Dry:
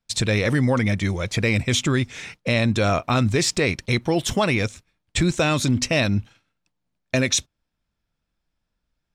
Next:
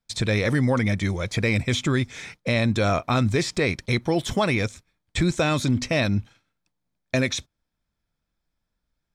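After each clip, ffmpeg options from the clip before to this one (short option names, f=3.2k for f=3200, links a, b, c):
-filter_complex "[0:a]acrossover=split=3900[a][b];[b]acompressor=threshold=-30dB:ratio=4:attack=1:release=60[c];[a][c]amix=inputs=2:normalize=0,bandreject=f=2.8k:w=9,volume=-1.5dB"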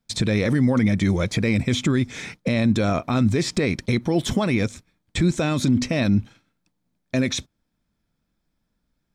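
-af "alimiter=limit=-19dB:level=0:latency=1:release=77,equalizer=f=230:w=0.88:g=8,volume=3dB"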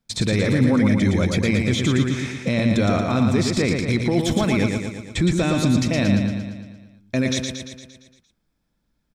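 -af "aecho=1:1:115|230|345|460|575|690|805|920:0.596|0.345|0.2|0.116|0.0674|0.0391|0.0227|0.0132"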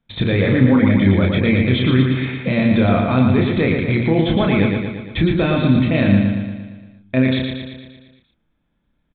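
-filter_complex "[0:a]aresample=8000,aresample=44100,asplit=2[a][b];[b]adelay=31,volume=-4dB[c];[a][c]amix=inputs=2:normalize=0,volume=2.5dB"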